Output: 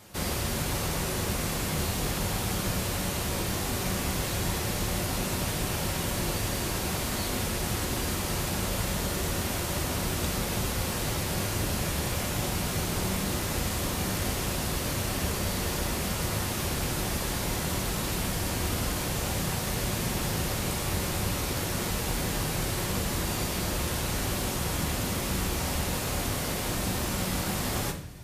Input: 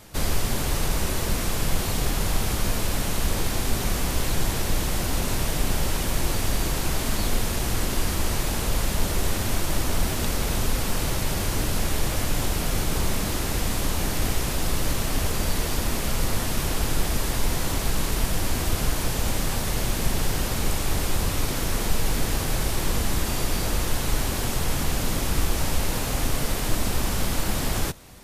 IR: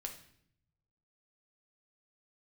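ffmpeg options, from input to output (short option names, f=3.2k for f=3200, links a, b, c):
-filter_complex "[0:a]highpass=60[a];[1:a]atrim=start_sample=2205[b];[a][b]afir=irnorm=-1:irlink=0"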